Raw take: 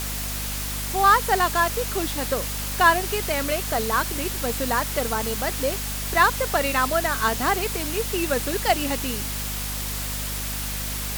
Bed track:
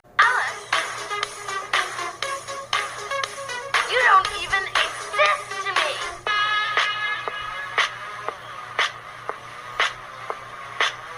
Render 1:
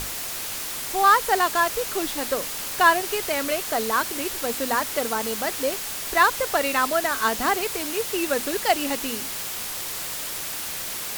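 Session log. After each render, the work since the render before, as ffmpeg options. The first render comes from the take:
ffmpeg -i in.wav -af "bandreject=frequency=50:width_type=h:width=6,bandreject=frequency=100:width_type=h:width=6,bandreject=frequency=150:width_type=h:width=6,bandreject=frequency=200:width_type=h:width=6,bandreject=frequency=250:width_type=h:width=6" out.wav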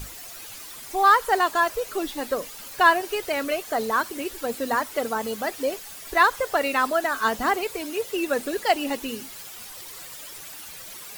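ffmpeg -i in.wav -af "afftdn=noise_reduction=12:noise_floor=-32" out.wav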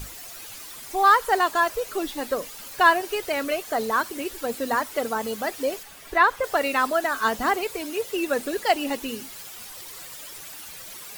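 ffmpeg -i in.wav -filter_complex "[0:a]asettb=1/sr,asplit=3[link_01][link_02][link_03];[link_01]atrim=end=5.834[link_04];[link_02]atrim=start=5.83:end=6.44,asetpts=PTS-STARTPTS,afade=type=in:duration=0.004:curve=qsin,afade=type=out:start_time=0.606:duration=0.004:curve=qsin,acrossover=split=3400[link_05][link_06];[link_06]acompressor=threshold=-44dB:ratio=4:attack=1:release=60[link_07];[link_05][link_07]amix=inputs=2:normalize=0[link_08];[link_03]atrim=start=6.436[link_09];[link_04][link_08]acrossfade=duration=0.004:curve1=hsin:curve2=qsin[link_10];[link_10][link_09]acrossfade=duration=0.004:curve1=qsin:curve2=hsin" out.wav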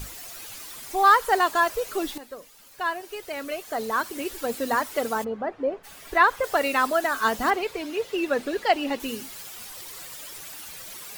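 ffmpeg -i in.wav -filter_complex "[0:a]asplit=3[link_01][link_02][link_03];[link_01]afade=type=out:start_time=5.23:duration=0.02[link_04];[link_02]lowpass=1200,afade=type=in:start_time=5.23:duration=0.02,afade=type=out:start_time=5.83:duration=0.02[link_05];[link_03]afade=type=in:start_time=5.83:duration=0.02[link_06];[link_04][link_05][link_06]amix=inputs=3:normalize=0,asettb=1/sr,asplit=3[link_07][link_08][link_09];[link_07]atrim=end=7.504[link_10];[link_08]atrim=start=7.5:end=9,asetpts=PTS-STARTPTS,afade=type=in:duration=0.004:curve=qsin,afade=type=out:start_time=1.496:duration=0.004:curve=qsin,acrossover=split=5200[link_11][link_12];[link_12]acompressor=threshold=-50dB:ratio=4:attack=1:release=60[link_13];[link_11][link_13]amix=inputs=2:normalize=0[link_14];[link_09]atrim=start=8.996[link_15];[link_10][link_14]acrossfade=duration=0.004:curve1=hsin:curve2=qsin[link_16];[link_16][link_15]acrossfade=duration=0.004:curve1=qsin:curve2=hsin,asplit=2[link_17][link_18];[link_17]atrim=end=2.18,asetpts=PTS-STARTPTS,afade=type=out:start_time=2.176:duration=0.004:curve=hsin:silence=0.211349[link_19];[link_18]atrim=start=2.18,asetpts=PTS-STARTPTS,afade=type=in:duration=2.12:curve=qua:silence=0.211349[link_20];[link_19][link_20]concat=n=2:v=0:a=1" out.wav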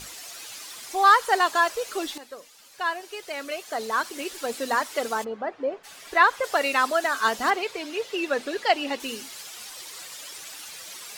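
ffmpeg -i in.wav -af "lowpass=5600,aemphasis=mode=production:type=bsi" out.wav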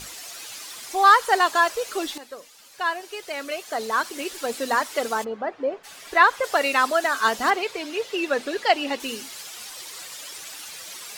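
ffmpeg -i in.wav -af "volume=2dB" out.wav

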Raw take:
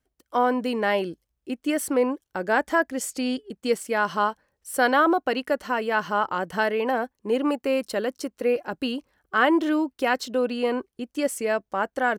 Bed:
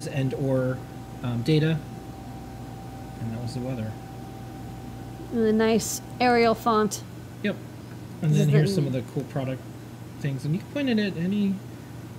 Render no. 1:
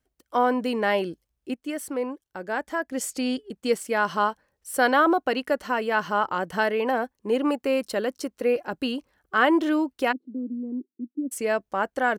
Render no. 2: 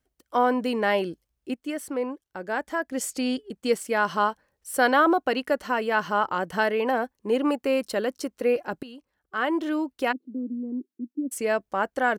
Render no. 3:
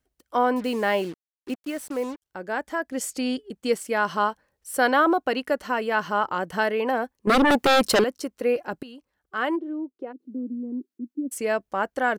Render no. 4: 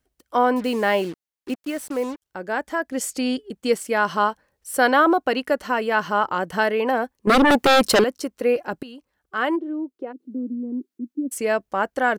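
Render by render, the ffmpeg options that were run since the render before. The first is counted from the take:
ffmpeg -i in.wav -filter_complex "[0:a]asplit=3[link_01][link_02][link_03];[link_01]afade=type=out:start_time=10.11:duration=0.02[link_04];[link_02]asuperpass=centerf=270:order=4:qfactor=2.6,afade=type=in:start_time=10.11:duration=0.02,afade=type=out:start_time=11.31:duration=0.02[link_05];[link_03]afade=type=in:start_time=11.31:duration=0.02[link_06];[link_04][link_05][link_06]amix=inputs=3:normalize=0,asplit=3[link_07][link_08][link_09];[link_07]atrim=end=1.542[link_10];[link_08]atrim=start=1.538:end=2.922,asetpts=PTS-STARTPTS,volume=-6.5dB[link_11];[link_09]atrim=start=2.918[link_12];[link_10][link_11]acrossfade=duration=0.004:curve1=hsin:curve2=hsin[link_13];[link_13][link_12]acrossfade=duration=0.004:curve1=hsin:curve2=hsin" out.wav
ffmpeg -i in.wav -filter_complex "[0:a]asettb=1/sr,asplit=3[link_01][link_02][link_03];[link_01]atrim=end=1.734[link_04];[link_02]atrim=start=1.73:end=2.44,asetpts=PTS-STARTPTS,afade=type=in:duration=0.004:curve=qsin,afade=type=out:start_time=0.706:duration=0.004:curve=qsin,highshelf=frequency=6600:gain=-4[link_05];[link_03]atrim=start=2.436[link_06];[link_04][link_05]acrossfade=duration=0.004:curve1=hsin:curve2=qsin[link_07];[link_07][link_06]acrossfade=duration=0.004:curve1=qsin:curve2=hsin,asplit=2[link_08][link_09];[link_08]atrim=end=8.83,asetpts=PTS-STARTPTS,afade=type=out:start_time=8.826:duration=0.004:curve=hsin:silence=0.133352[link_10];[link_09]atrim=start=8.83,asetpts=PTS-STARTPTS,afade=type=in:duration=1.5:silence=0.133352[link_11];[link_10][link_11]concat=n=2:v=0:a=1" out.wav
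ffmpeg -i in.wav -filter_complex "[0:a]asettb=1/sr,asplit=3[link_01][link_02][link_03];[link_01]atrim=end=0.564[link_04];[link_02]atrim=start=0.56:end=2.22,asetpts=PTS-STARTPTS,afade=type=in:duration=0.004:curve=qsin,afade=type=out:start_time=1.656:duration=0.004:curve=qsin,acrusher=bits=6:mix=0:aa=0.5[link_05];[link_03]atrim=start=2.216[link_06];[link_04][link_05]acrossfade=duration=0.004:curve1=hsin:curve2=qsin[link_07];[link_07][link_06]acrossfade=duration=0.004:curve1=qsin:curve2=hsin,asettb=1/sr,asplit=3[link_08][link_09][link_10];[link_08]atrim=end=7.274[link_11];[link_09]atrim=start=7.27:end=8.04,asetpts=PTS-STARTPTS,afade=type=in:duration=0.004:curve=qsin,afade=type=out:start_time=0.766:duration=0.004:curve=qsin,aeval=exprs='0.2*sin(PI/2*3.16*val(0)/0.2)':channel_layout=same[link_12];[link_10]atrim=start=8.036[link_13];[link_11][link_12]acrossfade=duration=0.004:curve1=hsin:curve2=qsin[link_14];[link_14][link_13]acrossfade=duration=0.004:curve1=qsin:curve2=hsin,asplit=3[link_15][link_16][link_17];[link_15]afade=type=out:start_time=9.55:duration=0.02[link_18];[link_16]bandpass=frequency=370:width_type=q:width=3.3,afade=type=in:start_time=9.55:duration=0.02,afade=type=out:start_time=10.18:duration=0.02[link_19];[link_17]afade=type=in:start_time=10.18:duration=0.02[link_20];[link_18][link_19][link_20]amix=inputs=3:normalize=0" out.wav
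ffmpeg -i in.wav -af "volume=3dB" out.wav

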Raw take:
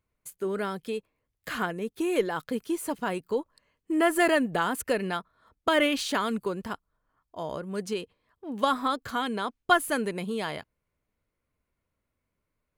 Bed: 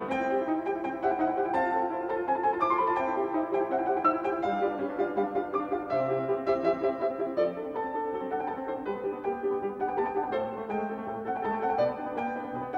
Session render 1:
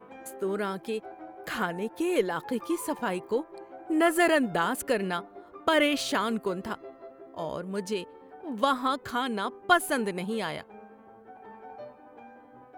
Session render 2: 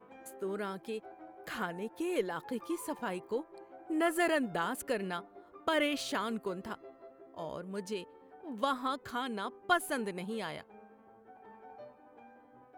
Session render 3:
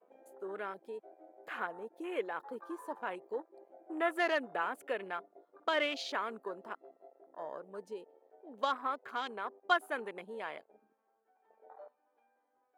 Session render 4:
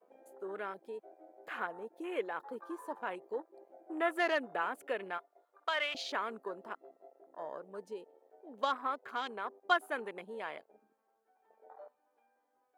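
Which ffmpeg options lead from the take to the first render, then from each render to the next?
ffmpeg -i in.wav -i bed.wav -filter_complex "[1:a]volume=-17dB[link_01];[0:a][link_01]amix=inputs=2:normalize=0" out.wav
ffmpeg -i in.wav -af "volume=-7dB" out.wav
ffmpeg -i in.wav -af "afwtdn=0.00562,highpass=470" out.wav
ffmpeg -i in.wav -filter_complex "[0:a]asettb=1/sr,asplit=3[link_01][link_02][link_03];[link_01]atrim=end=5.184[link_04];[link_02]atrim=start=5.18:end=5.95,asetpts=PTS-STARTPTS,afade=type=in:duration=0.004:curve=qsin,afade=type=out:start_time=0.766:duration=0.004:curve=qsin,highpass=800[link_05];[link_03]atrim=start=5.946[link_06];[link_04][link_05]acrossfade=duration=0.004:curve1=hsin:curve2=qsin[link_07];[link_07][link_06]acrossfade=duration=0.004:curve1=qsin:curve2=hsin" out.wav

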